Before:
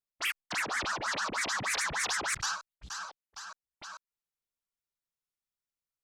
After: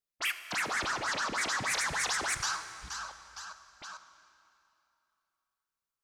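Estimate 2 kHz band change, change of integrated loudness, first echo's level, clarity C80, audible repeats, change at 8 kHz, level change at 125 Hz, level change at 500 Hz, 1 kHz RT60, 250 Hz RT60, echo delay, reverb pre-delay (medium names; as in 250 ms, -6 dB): +0.5 dB, +0.5 dB, no echo, 11.0 dB, no echo, +0.5 dB, +0.5 dB, +0.5 dB, 2.8 s, 2.6 s, no echo, 21 ms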